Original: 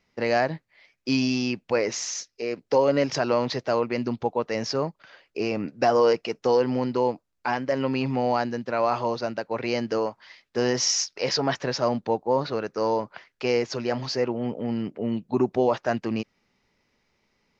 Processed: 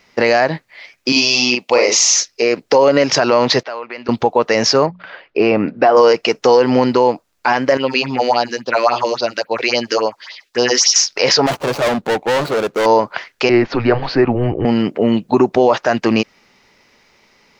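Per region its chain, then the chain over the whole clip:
0:01.12–0:02.15: high-pass filter 580 Hz 6 dB per octave + parametric band 1,600 Hz −13.5 dB 0.44 octaves + double-tracking delay 41 ms −3 dB
0:03.63–0:04.09: high-pass filter 1,300 Hz 6 dB per octave + downward compressor 2.5 to 1, threshold −44 dBFS + high-frequency loss of the air 230 metres
0:04.86–0:05.97: high-frequency loss of the air 330 metres + mains-hum notches 60/120/180/240 Hz
0:07.77–0:10.96: low-shelf EQ 430 Hz −11.5 dB + all-pass phaser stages 4, 3.6 Hz, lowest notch 120–2,000 Hz
0:11.46–0:12.86: running median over 25 samples + hard clipping −30 dBFS
0:13.49–0:14.65: frequency shifter −120 Hz + high-frequency loss of the air 400 metres
whole clip: low-shelf EQ 270 Hz −10 dB; downward compressor 2 to 1, threshold −28 dBFS; boost into a limiter +20 dB; level −1 dB

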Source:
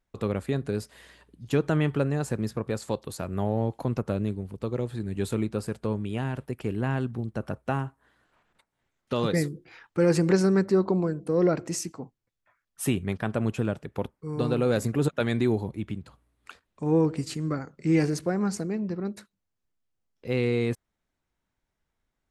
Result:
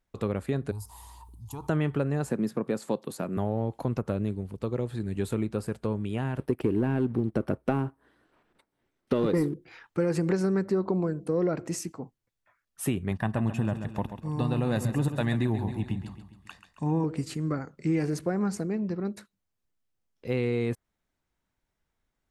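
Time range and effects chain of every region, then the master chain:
0:00.71–0:01.69: drawn EQ curve 100 Hz 0 dB, 150 Hz −18 dB, 340 Hz −19 dB, 560 Hz −26 dB, 920 Hz +5 dB, 1,600 Hz −29 dB, 12,000 Hz +1 dB + envelope flattener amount 50%
0:02.30–0:03.37: high-pass filter 180 Hz 24 dB per octave + low-shelf EQ 240 Hz +9 dB
0:06.39–0:09.54: parametric band 330 Hz +9.5 dB 1.3 octaves + notch filter 6,900 Hz, Q 6.1 + leveller curve on the samples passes 1
0:13.11–0:17.04: comb filter 1.1 ms, depth 58% + repeating echo 135 ms, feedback 49%, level −10.5 dB
whole clip: dynamic equaliser 5,300 Hz, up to −5 dB, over −49 dBFS, Q 0.7; downward compressor, threshold −22 dBFS

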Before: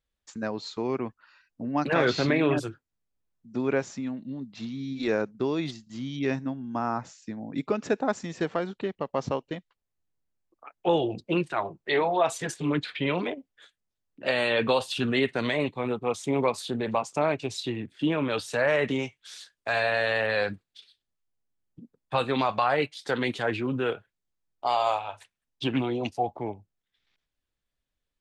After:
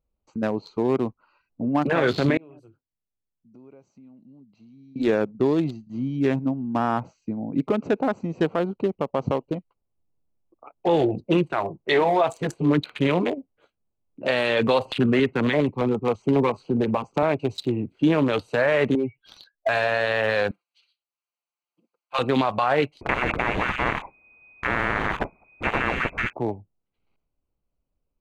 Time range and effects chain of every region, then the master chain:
0:02.37–0:04.96: first-order pre-emphasis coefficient 0.8 + downward compressor 3 to 1, threshold −56 dBFS
0:14.85–0:17.23: high-frequency loss of the air 90 metres + auto-filter notch square 7.3 Hz 640–3,700 Hz + multiband upward and downward compressor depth 40%
0:18.95–0:19.69: expanding power law on the bin magnitudes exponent 2.4 + downward compressor 16 to 1, threshold −34 dBFS + mid-hump overdrive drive 23 dB, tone 1,500 Hz, clips at −15 dBFS
0:20.51–0:22.19: high-pass filter 1,400 Hz + comb filter 5.8 ms, depth 92% + one half of a high-frequency compander encoder only
0:23.01–0:26.33: voice inversion scrambler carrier 2,500 Hz + every bin compressed towards the loudest bin 10 to 1
whole clip: adaptive Wiener filter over 25 samples; dynamic equaliser 5,400 Hz, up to −6 dB, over −56 dBFS, Q 2.7; brickwall limiter −18.5 dBFS; level +7.5 dB

